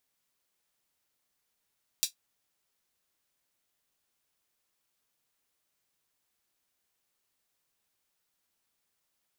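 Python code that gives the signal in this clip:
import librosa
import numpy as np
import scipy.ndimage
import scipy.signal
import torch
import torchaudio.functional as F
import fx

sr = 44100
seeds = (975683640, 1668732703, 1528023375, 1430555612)

y = fx.drum_hat(sr, length_s=0.24, from_hz=4100.0, decay_s=0.12)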